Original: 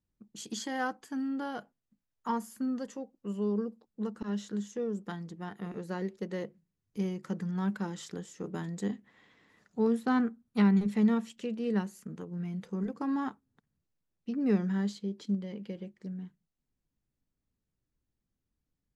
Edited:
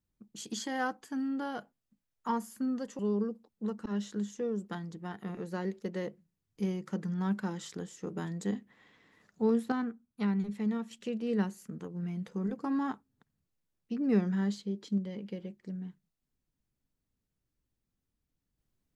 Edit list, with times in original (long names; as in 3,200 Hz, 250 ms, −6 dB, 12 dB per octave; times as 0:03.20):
0:02.99–0:03.36: remove
0:10.09–0:11.28: clip gain −6.5 dB